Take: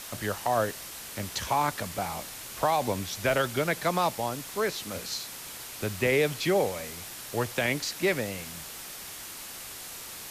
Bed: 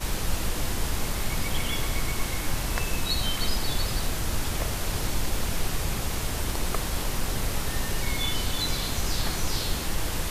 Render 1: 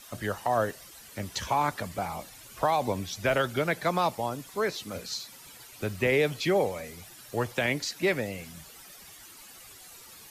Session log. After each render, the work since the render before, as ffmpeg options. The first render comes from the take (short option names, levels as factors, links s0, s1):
-af "afftdn=nr=12:nf=-42"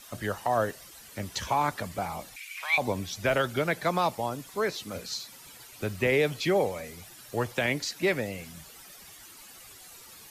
-filter_complex "[0:a]asettb=1/sr,asplit=3[s0][s1][s2];[s0]atrim=end=2.364[s3];[s1]atrim=start=2.36:end=2.78,asetpts=PTS-STARTPTS,afade=t=in:d=0.004:c=qsin,afade=t=out:st=0.416:d=0.004:c=qsin,highpass=f=2300:t=q:w=12[s4];[s2]atrim=start=2.776[s5];[s3][s4]acrossfade=d=0.004:c1=hsin:c2=qsin[s6];[s6][s5]acrossfade=d=0.004:c1=qsin:c2=hsin"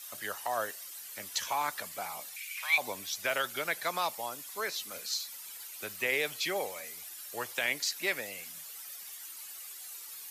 -af "highpass=f=1500:p=1,highshelf=f=11000:g=11.5"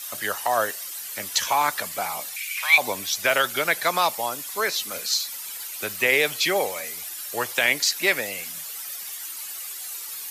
-af "volume=3.35"